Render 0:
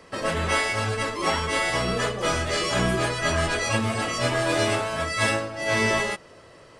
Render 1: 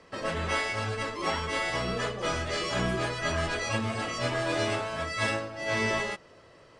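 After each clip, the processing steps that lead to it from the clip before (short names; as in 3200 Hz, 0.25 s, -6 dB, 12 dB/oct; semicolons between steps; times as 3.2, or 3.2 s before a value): LPF 7100 Hz 12 dB/oct; gain -5.5 dB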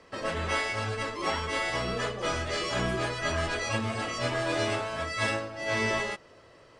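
bell 170 Hz -3.5 dB 0.43 oct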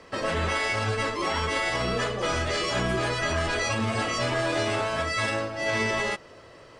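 limiter -23.5 dBFS, peak gain reduction 9 dB; gain +6 dB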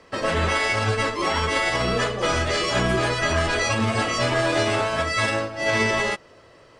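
upward expander 1.5:1, over -39 dBFS; gain +5.5 dB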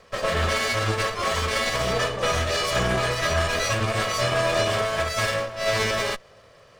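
minimum comb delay 1.7 ms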